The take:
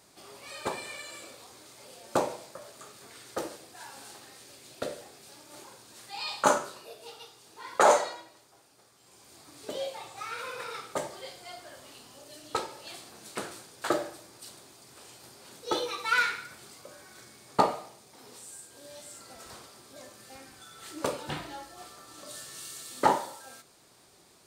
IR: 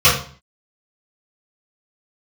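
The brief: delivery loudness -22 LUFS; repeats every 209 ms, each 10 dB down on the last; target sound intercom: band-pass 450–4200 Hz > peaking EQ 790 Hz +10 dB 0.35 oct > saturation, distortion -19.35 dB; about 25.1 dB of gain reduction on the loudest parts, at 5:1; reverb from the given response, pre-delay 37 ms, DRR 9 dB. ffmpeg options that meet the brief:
-filter_complex "[0:a]acompressor=threshold=0.00501:ratio=5,aecho=1:1:209|418|627|836:0.316|0.101|0.0324|0.0104,asplit=2[s0][s1];[1:a]atrim=start_sample=2205,adelay=37[s2];[s1][s2]afir=irnorm=-1:irlink=0,volume=0.0188[s3];[s0][s3]amix=inputs=2:normalize=0,highpass=450,lowpass=4200,equalizer=f=790:t=o:w=0.35:g=10,asoftclip=threshold=0.0224,volume=22.4"

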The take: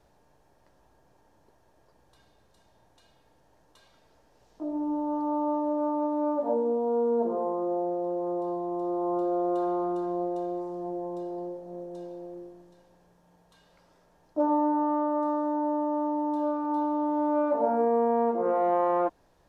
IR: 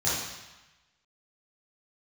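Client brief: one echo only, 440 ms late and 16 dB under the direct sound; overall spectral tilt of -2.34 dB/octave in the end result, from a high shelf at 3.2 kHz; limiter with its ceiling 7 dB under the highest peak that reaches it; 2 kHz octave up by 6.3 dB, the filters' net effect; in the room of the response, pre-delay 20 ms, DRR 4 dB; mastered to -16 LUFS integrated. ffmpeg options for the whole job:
-filter_complex "[0:a]equalizer=f=2000:t=o:g=7.5,highshelf=f=3200:g=5,alimiter=limit=0.1:level=0:latency=1,aecho=1:1:440:0.158,asplit=2[s0][s1];[1:a]atrim=start_sample=2205,adelay=20[s2];[s1][s2]afir=irnorm=-1:irlink=0,volume=0.178[s3];[s0][s3]amix=inputs=2:normalize=0,volume=3.35"

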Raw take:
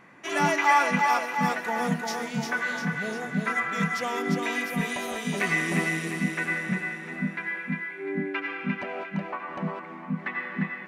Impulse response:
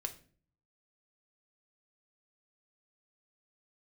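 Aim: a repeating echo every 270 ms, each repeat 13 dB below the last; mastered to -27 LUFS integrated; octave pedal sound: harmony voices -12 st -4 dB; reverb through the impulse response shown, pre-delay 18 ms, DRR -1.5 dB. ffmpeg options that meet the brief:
-filter_complex "[0:a]aecho=1:1:270|540|810:0.224|0.0493|0.0108,asplit=2[s0][s1];[1:a]atrim=start_sample=2205,adelay=18[s2];[s1][s2]afir=irnorm=-1:irlink=0,volume=1.26[s3];[s0][s3]amix=inputs=2:normalize=0,asplit=2[s4][s5];[s5]asetrate=22050,aresample=44100,atempo=2,volume=0.631[s6];[s4][s6]amix=inputs=2:normalize=0,volume=0.596"

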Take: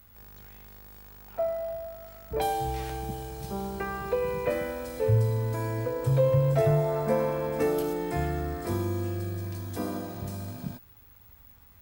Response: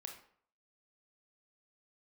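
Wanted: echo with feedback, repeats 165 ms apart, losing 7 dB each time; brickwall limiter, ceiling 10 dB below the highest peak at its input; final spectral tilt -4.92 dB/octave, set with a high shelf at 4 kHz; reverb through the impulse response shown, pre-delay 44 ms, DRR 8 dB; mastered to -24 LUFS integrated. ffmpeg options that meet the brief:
-filter_complex "[0:a]highshelf=f=4000:g=8.5,alimiter=limit=0.0841:level=0:latency=1,aecho=1:1:165|330|495|660|825:0.447|0.201|0.0905|0.0407|0.0183,asplit=2[s0][s1];[1:a]atrim=start_sample=2205,adelay=44[s2];[s1][s2]afir=irnorm=-1:irlink=0,volume=0.631[s3];[s0][s3]amix=inputs=2:normalize=0,volume=2.11"

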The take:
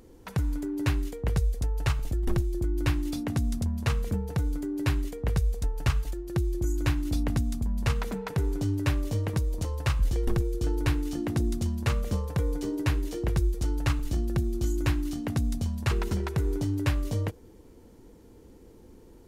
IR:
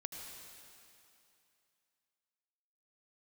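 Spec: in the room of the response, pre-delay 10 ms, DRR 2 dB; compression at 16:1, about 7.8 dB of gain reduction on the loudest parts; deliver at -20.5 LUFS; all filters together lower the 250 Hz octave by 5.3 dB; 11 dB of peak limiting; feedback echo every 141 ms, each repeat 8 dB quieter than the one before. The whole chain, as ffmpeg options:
-filter_complex "[0:a]equalizer=f=250:t=o:g=-7.5,acompressor=threshold=0.0398:ratio=16,alimiter=level_in=1.5:limit=0.0631:level=0:latency=1,volume=0.668,aecho=1:1:141|282|423|564|705:0.398|0.159|0.0637|0.0255|0.0102,asplit=2[s0][s1];[1:a]atrim=start_sample=2205,adelay=10[s2];[s1][s2]afir=irnorm=-1:irlink=0,volume=1[s3];[s0][s3]amix=inputs=2:normalize=0,volume=5.62"

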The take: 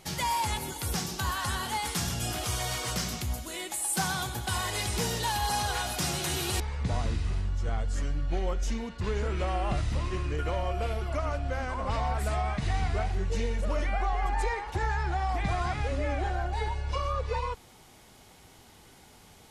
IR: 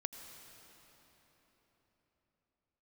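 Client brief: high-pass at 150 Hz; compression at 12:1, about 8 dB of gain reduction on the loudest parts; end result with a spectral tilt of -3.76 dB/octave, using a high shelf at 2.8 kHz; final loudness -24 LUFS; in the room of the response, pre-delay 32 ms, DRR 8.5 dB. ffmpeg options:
-filter_complex "[0:a]highpass=150,highshelf=f=2800:g=-5.5,acompressor=threshold=0.0178:ratio=12,asplit=2[s0][s1];[1:a]atrim=start_sample=2205,adelay=32[s2];[s1][s2]afir=irnorm=-1:irlink=0,volume=0.447[s3];[s0][s3]amix=inputs=2:normalize=0,volume=5.31"

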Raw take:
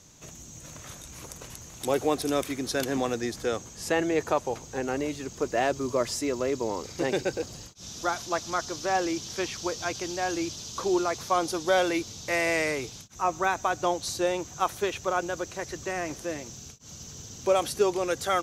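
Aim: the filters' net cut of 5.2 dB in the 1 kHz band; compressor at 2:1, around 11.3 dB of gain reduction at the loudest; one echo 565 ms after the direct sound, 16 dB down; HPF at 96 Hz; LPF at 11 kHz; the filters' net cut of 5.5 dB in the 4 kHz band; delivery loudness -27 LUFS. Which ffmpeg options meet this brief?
-af "highpass=96,lowpass=11000,equalizer=f=1000:t=o:g=-7.5,equalizer=f=4000:t=o:g=-7,acompressor=threshold=0.00891:ratio=2,aecho=1:1:565:0.158,volume=4.22"

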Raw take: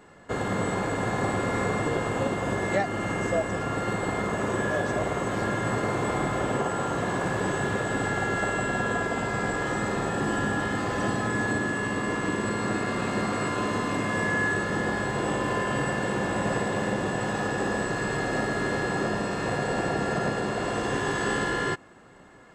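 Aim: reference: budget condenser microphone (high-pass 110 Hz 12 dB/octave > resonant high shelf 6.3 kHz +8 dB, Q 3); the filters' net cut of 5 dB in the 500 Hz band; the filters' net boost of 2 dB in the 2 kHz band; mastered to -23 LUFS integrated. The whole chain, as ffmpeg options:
-af "highpass=110,equalizer=f=500:t=o:g=-6.5,equalizer=f=2000:t=o:g=3.5,highshelf=f=6300:t=q:w=3:g=8,volume=1.5"

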